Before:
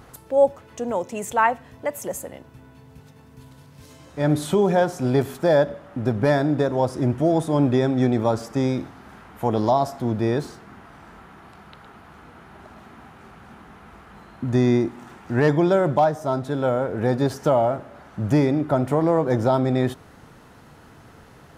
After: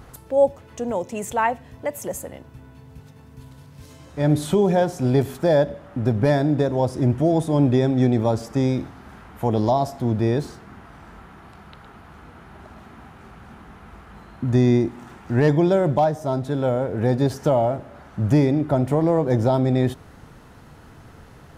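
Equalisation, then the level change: bass shelf 100 Hz +9 dB; dynamic bell 1.3 kHz, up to -6 dB, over -38 dBFS, Q 1.9; 0.0 dB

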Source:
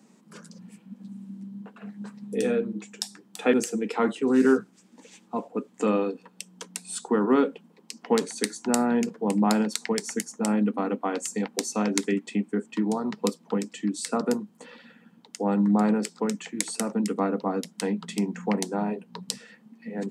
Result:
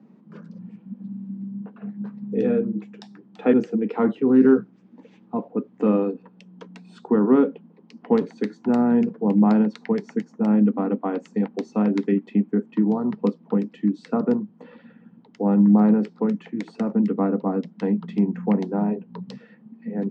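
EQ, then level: distance through air 210 m; tilt EQ -3 dB/octave; treble shelf 10 kHz -6 dB; 0.0 dB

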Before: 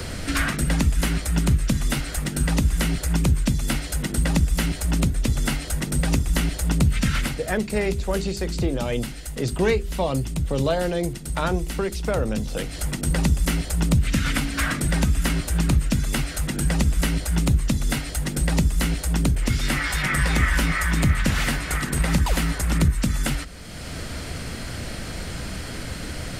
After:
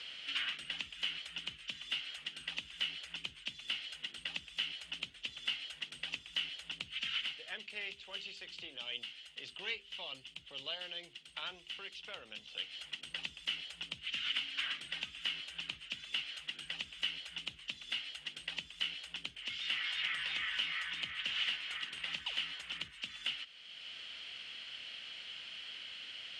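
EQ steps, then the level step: band-pass filter 3 kHz, Q 7.4; distance through air 52 m; +3.0 dB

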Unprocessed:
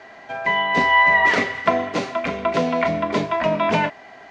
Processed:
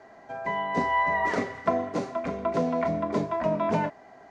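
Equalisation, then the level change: peaking EQ 2.9 kHz -14 dB 1.8 oct; -4.0 dB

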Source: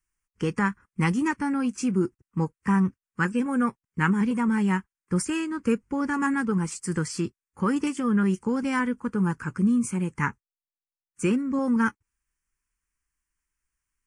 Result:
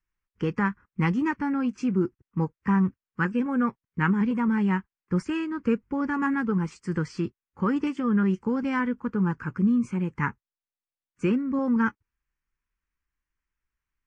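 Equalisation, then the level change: distance through air 190 m; band-stop 680 Hz, Q 12; 0.0 dB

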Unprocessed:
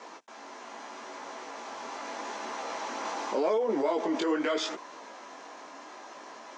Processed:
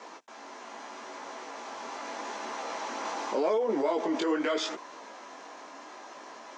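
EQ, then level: high-pass 95 Hz; 0.0 dB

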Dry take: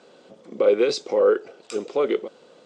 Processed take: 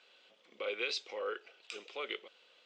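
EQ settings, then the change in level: band-pass filter 2.8 kHz, Q 2.1; 0.0 dB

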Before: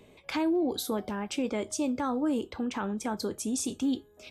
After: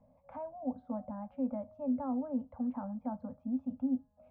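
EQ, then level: Chebyshev band-stop 260–530 Hz, order 3; dynamic bell 260 Hz, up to +7 dB, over -44 dBFS, Q 4.8; four-pole ladder low-pass 960 Hz, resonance 30%; 0.0 dB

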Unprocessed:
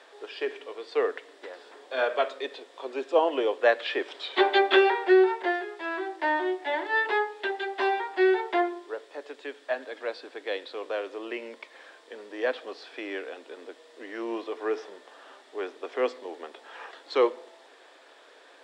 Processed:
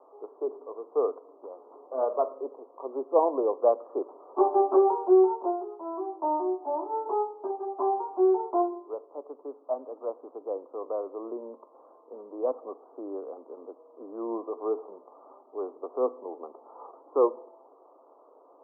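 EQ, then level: steep low-pass 1.2 kHz 96 dB/octave; 0.0 dB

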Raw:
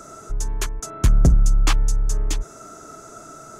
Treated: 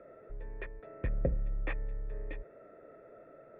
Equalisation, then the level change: cascade formant filter e; +2.0 dB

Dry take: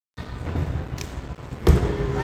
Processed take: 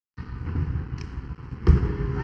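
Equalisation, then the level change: tape spacing loss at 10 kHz 28 dB; high-order bell 4 kHz +13 dB 1.2 oct; static phaser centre 1.5 kHz, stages 4; 0.0 dB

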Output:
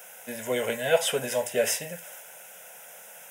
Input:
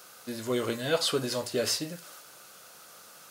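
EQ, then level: high-pass 220 Hz 12 dB/octave; static phaser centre 1.2 kHz, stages 6; +8.0 dB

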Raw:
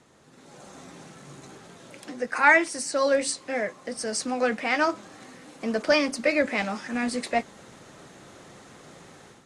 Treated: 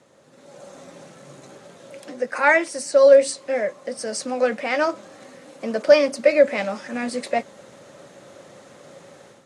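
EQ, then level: high-pass 100 Hz; peaking EQ 560 Hz +13.5 dB 0.24 oct; 0.0 dB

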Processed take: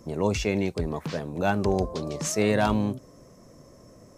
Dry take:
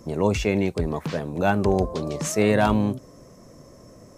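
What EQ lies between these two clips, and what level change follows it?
dynamic bell 5.2 kHz, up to +5 dB, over -46 dBFS, Q 1.3; -3.5 dB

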